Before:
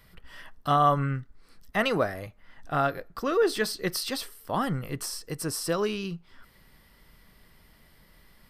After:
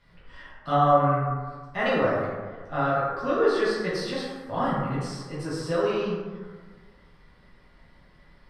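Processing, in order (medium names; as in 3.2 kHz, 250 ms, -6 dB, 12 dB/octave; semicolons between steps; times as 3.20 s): distance through air 110 m; plate-style reverb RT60 1.5 s, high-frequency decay 0.4×, DRR -9 dB; trim -6.5 dB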